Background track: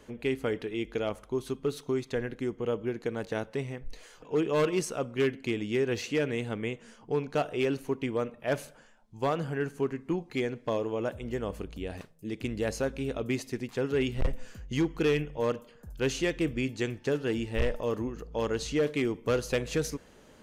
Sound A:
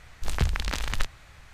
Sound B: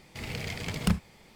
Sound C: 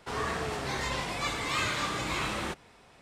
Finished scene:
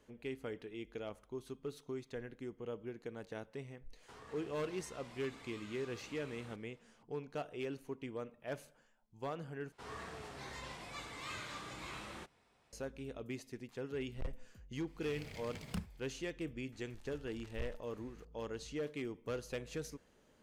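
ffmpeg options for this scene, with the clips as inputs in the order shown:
-filter_complex "[3:a]asplit=2[s0][s1];[0:a]volume=0.224[s2];[s0]acompressor=threshold=0.0158:ratio=6:attack=3.2:release=140:knee=1:detection=peak[s3];[1:a]acompressor=threshold=0.0178:ratio=6:attack=0.38:release=169:knee=1:detection=peak[s4];[s2]asplit=2[s5][s6];[s5]atrim=end=9.724[s7];[s1]atrim=end=3.01,asetpts=PTS-STARTPTS,volume=0.178[s8];[s6]atrim=start=12.726[s9];[s3]atrim=end=3.01,asetpts=PTS-STARTPTS,volume=0.158,afade=t=in:d=0.004:c=hsin,afade=t=out:st=3.006:d=0.004:c=hsin,adelay=4020[s10];[2:a]atrim=end=1.35,asetpts=PTS-STARTPTS,volume=0.178,afade=t=in:d=0.004:c=hsin,afade=t=out:st=1.346:d=0.004:c=hsin,adelay=14870[s11];[s4]atrim=end=1.53,asetpts=PTS-STARTPTS,volume=0.178,afade=t=in:d=0.004:c=hsin,afade=t=out:st=1.526:d=0.004:c=hsin,adelay=16720[s12];[s7][s8]acrossfade=d=0.004:c1=hsin:c2=hsin[s13];[s13][s9]acrossfade=d=0.004:c1=hsin:c2=hsin[s14];[s14][s10][s11][s12]amix=inputs=4:normalize=0"

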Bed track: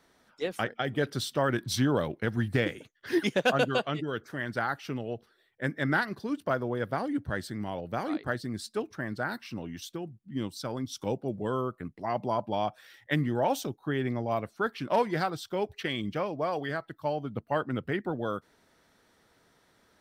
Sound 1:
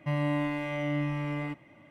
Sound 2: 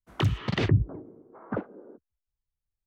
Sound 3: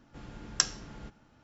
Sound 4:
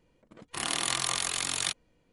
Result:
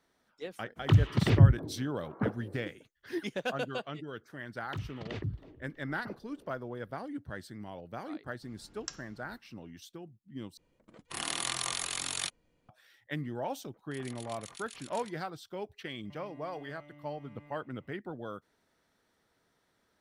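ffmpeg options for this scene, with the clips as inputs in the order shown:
-filter_complex "[2:a]asplit=2[s0][s1];[4:a]asplit=2[s2][s3];[0:a]volume=0.355[s4];[s0]equalizer=f=110:t=o:w=2.5:g=7.5[s5];[s1]asplit=6[s6][s7][s8][s9][s10][s11];[s7]adelay=323,afreqshift=-31,volume=0.0708[s12];[s8]adelay=646,afreqshift=-62,volume=0.0437[s13];[s9]adelay=969,afreqshift=-93,volume=0.0272[s14];[s10]adelay=1292,afreqshift=-124,volume=0.0168[s15];[s11]adelay=1615,afreqshift=-155,volume=0.0105[s16];[s6][s12][s13][s14][s15][s16]amix=inputs=6:normalize=0[s17];[s3]acrossover=split=1900[s18][s19];[s18]aeval=exprs='val(0)*(1-1/2+1/2*cos(2*PI*7.8*n/s))':c=same[s20];[s19]aeval=exprs='val(0)*(1-1/2-1/2*cos(2*PI*7.8*n/s))':c=same[s21];[s20][s21]amix=inputs=2:normalize=0[s22];[1:a]acompressor=threshold=0.0126:ratio=6:attack=3.2:release=140:knee=1:detection=peak[s23];[s4]asplit=2[s24][s25];[s24]atrim=end=10.574[s26];[s2]atrim=end=2.12,asetpts=PTS-STARTPTS,volume=0.596[s27];[s25]atrim=start=12.686[s28];[s5]atrim=end=2.86,asetpts=PTS-STARTPTS,volume=0.631,afade=t=in:d=0.004:c=hsin,afade=t=out:st=2.856:d=0.004:c=hsin,adelay=690[s29];[s17]atrim=end=2.86,asetpts=PTS-STARTPTS,volume=0.2,afade=t=in:d=0.004:c=hsin,afade=t=out:st=2.856:d=0.004:c=hsin,adelay=199773S[s30];[3:a]atrim=end=1.43,asetpts=PTS-STARTPTS,volume=0.188,afade=t=in:d=0.004:c=hsin,afade=t=out:st=1.426:d=0.004:c=hsin,adelay=8280[s31];[s22]atrim=end=2.12,asetpts=PTS-STARTPTS,volume=0.168,afade=t=in:d=0.004:c=hsin,afade=t=out:st=2.116:d=0.004:c=hsin,adelay=13370[s32];[s23]atrim=end=1.9,asetpts=PTS-STARTPTS,volume=0.2,afade=t=in:d=0.004:c=hsin,afade=t=out:st=1.896:d=0.004:c=hsin,adelay=707364S[s33];[s26][s27]acrossfade=d=0.004:c1=hsin:c2=hsin[s34];[s34][s28]acrossfade=d=0.004:c1=hsin:c2=hsin[s35];[s35][s29][s30][s31][s32][s33]amix=inputs=6:normalize=0"

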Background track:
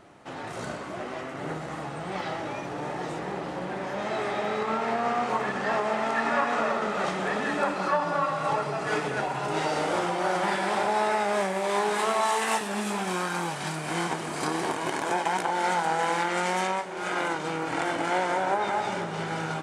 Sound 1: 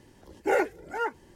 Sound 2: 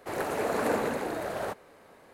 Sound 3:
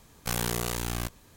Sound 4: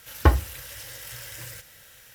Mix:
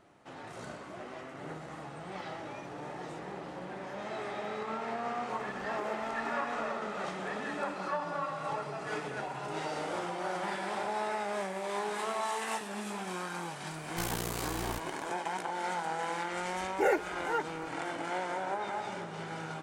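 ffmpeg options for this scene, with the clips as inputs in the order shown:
-filter_complex "[1:a]asplit=2[s0][s1];[0:a]volume=0.355[s2];[s0]acompressor=threshold=0.0224:ratio=6:attack=3.2:release=140:knee=1:detection=peak,atrim=end=1.35,asetpts=PTS-STARTPTS,volume=0.398,afade=t=in:d=0.004:c=hsin,afade=t=out:st=1.346:d=0.004:c=hsin,adelay=235053S[s3];[3:a]atrim=end=1.36,asetpts=PTS-STARTPTS,volume=0.473,afade=t=in:d=0.004:c=hsin,afade=t=out:st=1.356:d=0.004:c=hsin,adelay=13710[s4];[s1]atrim=end=1.35,asetpts=PTS-STARTPTS,volume=0.708,afade=t=in:d=0.004:c=hsin,afade=t=out:st=1.346:d=0.004:c=hsin,adelay=16330[s5];[s2][s3][s4][s5]amix=inputs=4:normalize=0"

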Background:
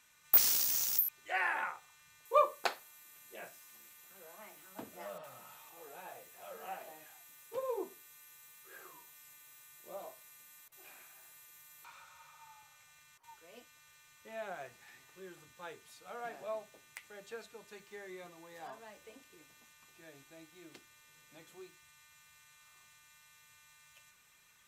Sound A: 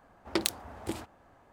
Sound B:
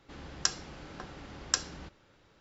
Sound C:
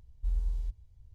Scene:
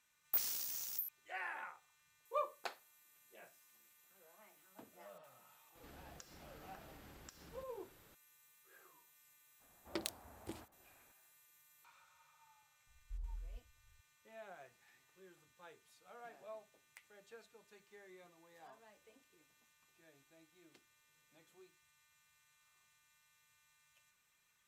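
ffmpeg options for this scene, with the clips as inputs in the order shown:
-filter_complex "[0:a]volume=0.282[s0];[2:a]acompressor=threshold=0.00251:ratio=6:attack=3.2:release=140:knee=1:detection=peak,atrim=end=2.4,asetpts=PTS-STARTPTS,volume=0.708,afade=t=in:d=0.004:c=hsin,afade=t=out:st=2.396:d=0.004:c=hsin,adelay=5750[s1];[1:a]atrim=end=1.52,asetpts=PTS-STARTPTS,volume=0.224,afade=t=in:d=0.004:c=hsin,afade=t=out:st=1.516:d=0.004:c=hsin,adelay=9600[s2];[3:a]atrim=end=1.14,asetpts=PTS-STARTPTS,volume=0.168,afade=t=in:d=0.004:c=hsin,afade=t=out:st=1.136:d=0.004:c=hsin,adelay=12870[s3];[s0][s1][s2][s3]amix=inputs=4:normalize=0"

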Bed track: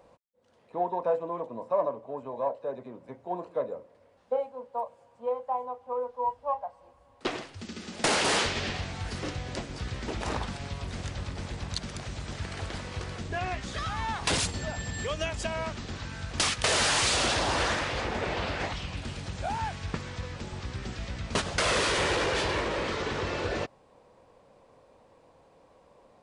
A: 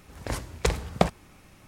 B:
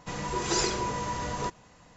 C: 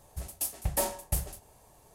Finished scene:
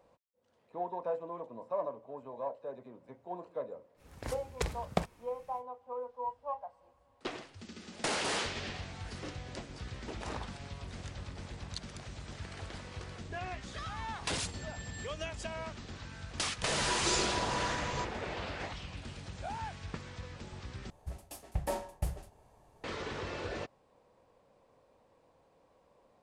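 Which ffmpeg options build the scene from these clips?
-filter_complex "[0:a]volume=0.398[s0];[3:a]aemphasis=mode=reproduction:type=75fm[s1];[s0]asplit=2[s2][s3];[s2]atrim=end=20.904[s4];[s1]atrim=end=1.94,asetpts=PTS-STARTPTS,volume=0.668[s5];[s3]atrim=start=22.836[s6];[1:a]atrim=end=1.67,asetpts=PTS-STARTPTS,volume=0.335,afade=t=in:d=0.05,afade=t=out:st=1.62:d=0.05,adelay=3960[s7];[2:a]atrim=end=1.96,asetpts=PTS-STARTPTS,volume=0.531,afade=t=in:d=0.004:c=hsin,afade=t=out:st=1.956:d=0.004:c=hsin,adelay=16550[s8];[s4][s5]acrossfade=d=0.004:c1=hsin:c2=hsin[s9];[s9][s6]acrossfade=d=0.004:c1=hsin:c2=hsin[s10];[s10][s7][s8]amix=inputs=3:normalize=0"

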